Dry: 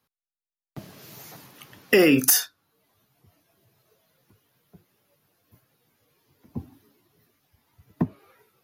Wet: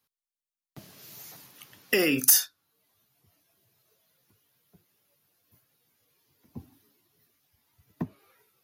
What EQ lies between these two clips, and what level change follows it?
treble shelf 2.4 kHz +9 dB; -8.5 dB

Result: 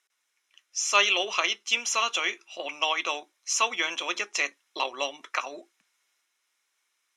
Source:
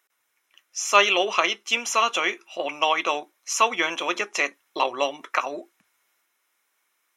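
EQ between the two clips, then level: high-pass 170 Hz; low-pass 11 kHz 12 dB/octave; peaking EQ 5.1 kHz +9.5 dB 2.5 oct; -8.5 dB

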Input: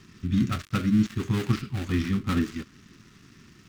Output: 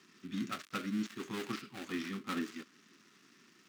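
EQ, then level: Bessel high-pass 320 Hz, order 4; -6.5 dB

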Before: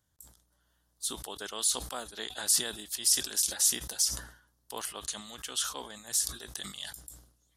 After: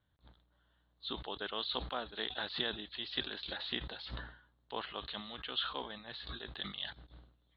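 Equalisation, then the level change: steep low-pass 4.1 kHz 96 dB/octave; 0.0 dB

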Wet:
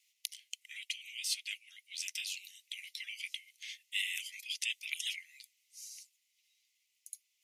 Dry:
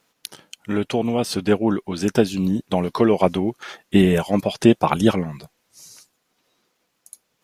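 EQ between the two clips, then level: rippled Chebyshev high-pass 2 kHz, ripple 3 dB; -3.5 dB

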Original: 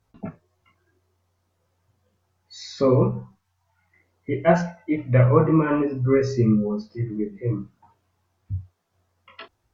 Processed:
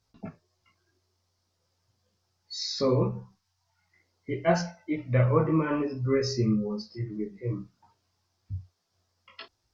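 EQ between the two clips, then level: peaking EQ 5 kHz +15 dB 0.88 oct; -6.5 dB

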